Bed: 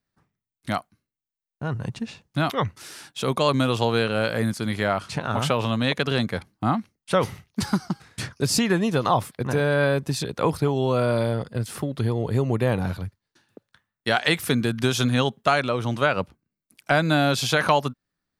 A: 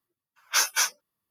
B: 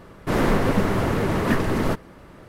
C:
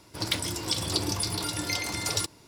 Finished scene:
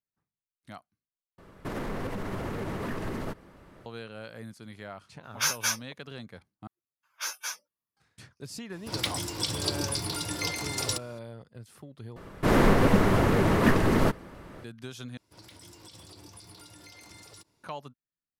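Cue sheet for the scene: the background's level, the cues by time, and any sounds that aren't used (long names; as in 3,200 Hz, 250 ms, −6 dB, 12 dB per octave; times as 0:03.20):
bed −19 dB
0:01.38: overwrite with B −7.5 dB + brickwall limiter −18 dBFS
0:04.87: mix in A −4 dB
0:06.67: overwrite with A −11.5 dB
0:08.72: mix in C −2 dB
0:12.16: overwrite with B −0.5 dB
0:15.17: overwrite with C −17 dB + brickwall limiter −22.5 dBFS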